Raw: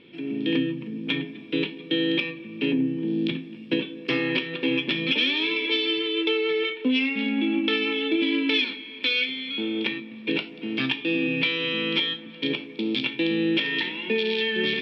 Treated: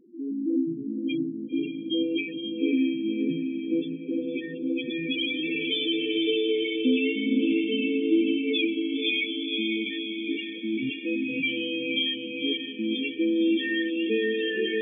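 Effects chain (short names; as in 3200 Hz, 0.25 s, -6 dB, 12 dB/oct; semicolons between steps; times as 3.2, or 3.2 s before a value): loudest bins only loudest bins 4; diffused feedback echo 0.538 s, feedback 53%, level -4 dB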